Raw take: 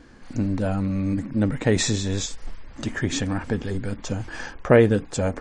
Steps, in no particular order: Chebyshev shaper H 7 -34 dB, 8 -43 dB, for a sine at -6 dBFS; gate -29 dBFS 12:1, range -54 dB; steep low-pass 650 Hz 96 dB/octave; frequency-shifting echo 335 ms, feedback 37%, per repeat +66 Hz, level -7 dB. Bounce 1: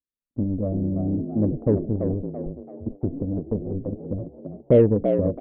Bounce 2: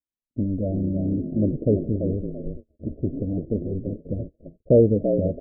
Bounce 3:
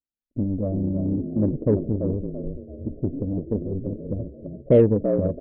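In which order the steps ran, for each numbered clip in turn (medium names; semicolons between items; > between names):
steep low-pass > Chebyshev shaper > gate > frequency-shifting echo; frequency-shifting echo > Chebyshev shaper > gate > steep low-pass; gate > frequency-shifting echo > steep low-pass > Chebyshev shaper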